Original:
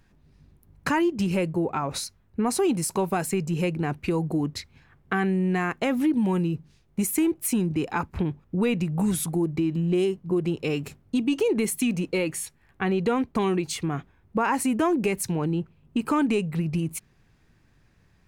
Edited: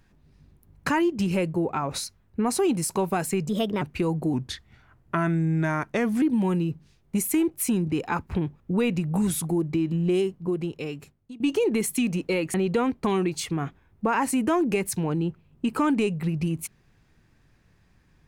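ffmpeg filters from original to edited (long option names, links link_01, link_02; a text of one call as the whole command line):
ffmpeg -i in.wav -filter_complex "[0:a]asplit=7[link_01][link_02][link_03][link_04][link_05][link_06][link_07];[link_01]atrim=end=3.494[link_08];[link_02]atrim=start=3.49:end=3.9,asetpts=PTS-STARTPTS,asetrate=55566,aresample=44100[link_09];[link_03]atrim=start=3.896:end=4.424[link_10];[link_04]atrim=start=4.42:end=6.06,asetpts=PTS-STARTPTS,asetrate=38367,aresample=44100,atrim=end_sample=83131,asetpts=PTS-STARTPTS[link_11];[link_05]atrim=start=6.056:end=11.24,asetpts=PTS-STARTPTS,afade=type=out:start_time=3.984:duration=1.2:silence=0.0891251[link_12];[link_06]atrim=start=11.24:end=12.382,asetpts=PTS-STARTPTS,afade=type=in:duration=0.004:curve=hsin:silence=0.0891251[link_13];[link_07]atrim=start=12.858[link_14];[link_08][link_09]acrossfade=duration=0.004:curve1=hsin:curve2=hsin[link_15];[link_15][link_10]acrossfade=duration=0.004:curve1=hsin:curve2=hsin[link_16];[link_16][link_11]acrossfade=duration=0.004:curve1=hsin:curve2=hsin[link_17];[link_12][link_13]concat=n=2:v=0:a=1[link_18];[link_17][link_18]acrossfade=duration=0.004:curve1=hsin:curve2=hsin[link_19];[link_19][link_14]acrossfade=duration=0.004:curve1=hsin:curve2=hsin" out.wav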